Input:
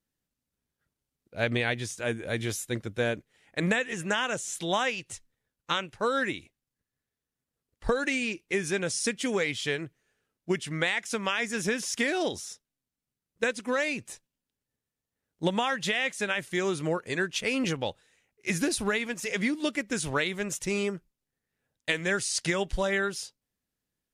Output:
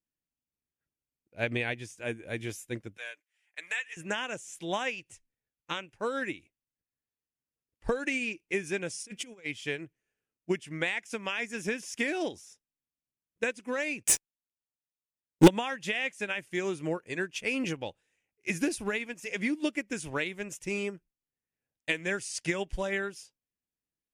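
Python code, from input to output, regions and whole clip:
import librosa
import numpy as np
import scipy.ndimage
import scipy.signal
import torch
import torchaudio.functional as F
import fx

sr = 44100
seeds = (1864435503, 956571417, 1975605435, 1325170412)

y = fx.chain(x, sr, fx.highpass(hz=1400.0, slope=12),
    fx.comb(ms=6.7, depth=0.43), at=(2.97, 3.97))
y = fx.chain(y, sr, fx.notch(hz=1800.0, q=13.0),
    fx.over_compress(threshold_db=-34.0, ratio=-0.5), at=(8.96, 9.46))
y = fx.chain(y, sr, fx.high_shelf(hz=5300.0, db=8.0),
    fx.leveller(passes=5), at=(14.03, 15.48))
y = fx.graphic_eq_31(y, sr, hz=(315, 1250, 2500, 4000), db=(4, -4, 5, -7))
y = fx.upward_expand(y, sr, threshold_db=-40.0, expansion=1.5)
y = y * 10.0 ** (2.0 / 20.0)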